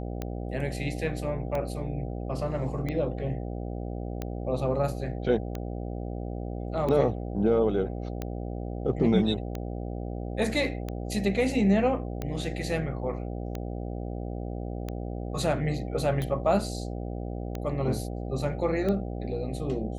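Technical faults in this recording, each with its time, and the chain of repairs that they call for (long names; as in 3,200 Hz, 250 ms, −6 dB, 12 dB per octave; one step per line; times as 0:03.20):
mains buzz 60 Hz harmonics 13 −34 dBFS
scratch tick 45 rpm −19 dBFS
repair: click removal
hum removal 60 Hz, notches 13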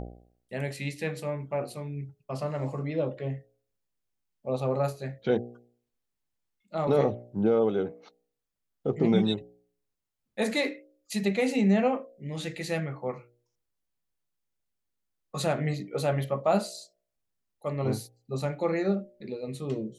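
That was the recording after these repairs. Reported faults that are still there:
none of them is left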